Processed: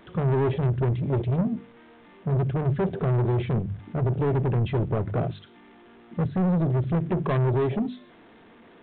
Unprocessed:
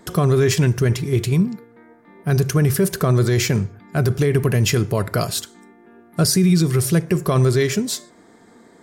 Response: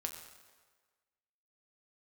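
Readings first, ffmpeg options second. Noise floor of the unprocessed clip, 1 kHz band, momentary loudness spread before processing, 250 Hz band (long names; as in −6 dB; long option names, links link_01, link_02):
−50 dBFS, −3.5 dB, 8 LU, −7.0 dB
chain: -af "aeval=exprs='val(0)+0.5*0.0299*sgn(val(0))':channel_layout=same,afwtdn=0.126,aresample=8000,asoftclip=type=tanh:threshold=-20dB,aresample=44100,bandreject=frequency=50:width_type=h:width=6,bandreject=frequency=100:width_type=h:width=6,bandreject=frequency=150:width_type=h:width=6,bandreject=frequency=200:width_type=h:width=6,bandreject=frequency=250:width_type=h:width=6"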